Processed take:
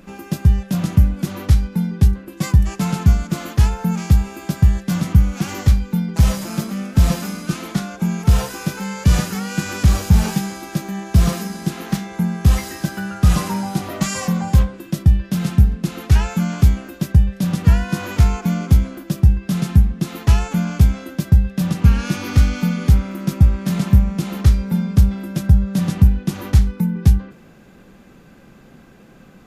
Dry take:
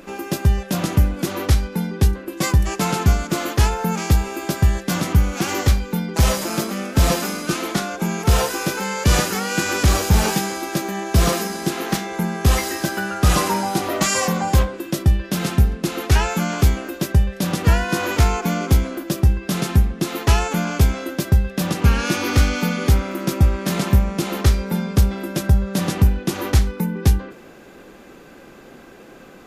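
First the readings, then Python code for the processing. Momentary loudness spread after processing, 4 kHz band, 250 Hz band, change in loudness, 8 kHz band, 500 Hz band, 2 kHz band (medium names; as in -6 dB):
9 LU, -5.5 dB, +2.0 dB, +1.5 dB, -5.5 dB, -7.0 dB, -5.5 dB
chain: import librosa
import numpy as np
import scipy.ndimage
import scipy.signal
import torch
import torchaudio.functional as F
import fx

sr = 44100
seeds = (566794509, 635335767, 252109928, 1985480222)

y = fx.low_shelf_res(x, sr, hz=250.0, db=8.0, q=1.5)
y = y * 10.0 ** (-5.5 / 20.0)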